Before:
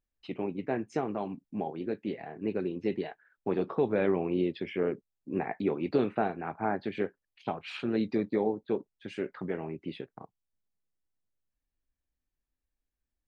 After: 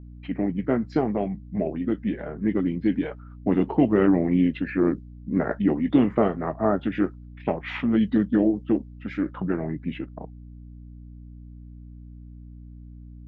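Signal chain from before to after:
formants moved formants −4 semitones
mains hum 60 Hz, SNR 17 dB
low-pass that shuts in the quiet parts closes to 2,300 Hz, open at −24 dBFS
level +8.5 dB

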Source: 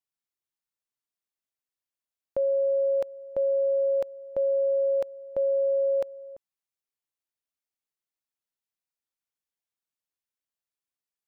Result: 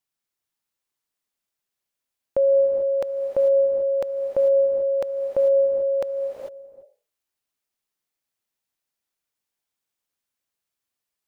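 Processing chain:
healed spectral selection 0:06.40–0:06.73, 390–830 Hz both
reverb whose tail is shaped and stops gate 470 ms rising, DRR 4 dB
level +6 dB

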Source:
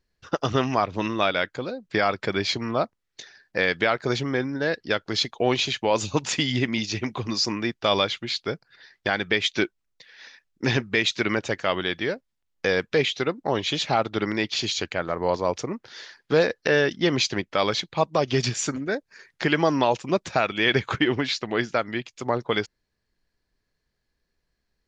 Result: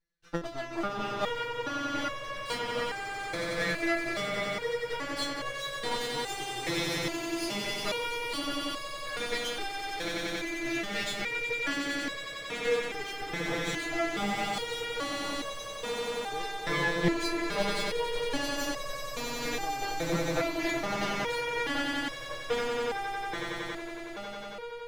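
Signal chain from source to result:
lower of the sound and its delayed copy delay 6.4 ms
echo that builds up and dies away 92 ms, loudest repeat 8, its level −7.5 dB
step-sequenced resonator 2.4 Hz 170–560 Hz
level +2.5 dB

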